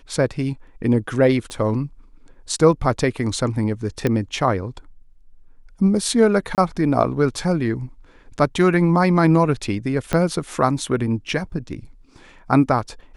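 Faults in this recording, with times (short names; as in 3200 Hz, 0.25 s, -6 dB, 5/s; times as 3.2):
1.5 pop -20 dBFS
4.07 pop -8 dBFS
6.55–6.58 gap 28 ms
10.13 pop -7 dBFS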